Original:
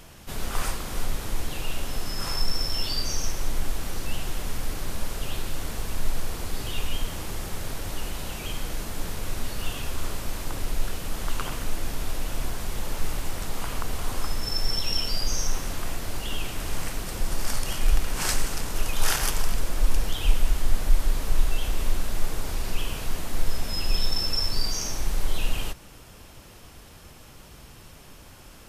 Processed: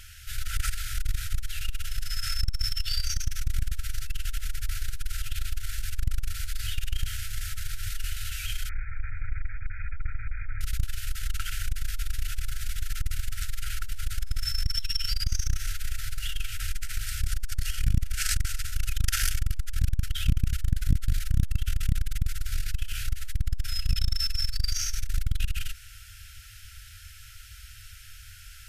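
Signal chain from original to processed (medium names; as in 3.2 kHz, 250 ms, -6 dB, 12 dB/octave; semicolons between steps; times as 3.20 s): FFT band-reject 110–1300 Hz; in parallel at -9.5 dB: hard clipper -17 dBFS, distortion -12 dB; 8.69–10.61 s: on the sum: brick-wall FIR low-pass 2.5 kHz; 21.29–22.25 s: doubling 13 ms -6.5 dB; transformer saturation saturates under 130 Hz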